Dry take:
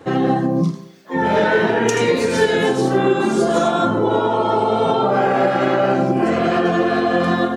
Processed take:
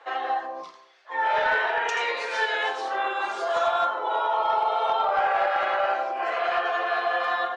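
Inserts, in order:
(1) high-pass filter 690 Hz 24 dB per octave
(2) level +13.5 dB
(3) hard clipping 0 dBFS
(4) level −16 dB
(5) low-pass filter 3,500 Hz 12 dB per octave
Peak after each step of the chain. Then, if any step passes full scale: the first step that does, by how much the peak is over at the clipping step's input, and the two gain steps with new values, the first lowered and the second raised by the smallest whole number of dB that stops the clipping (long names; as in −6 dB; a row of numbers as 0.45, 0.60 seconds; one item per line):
−8.0, +5.5, 0.0, −16.0, −15.5 dBFS
step 2, 5.5 dB
step 2 +7.5 dB, step 4 −10 dB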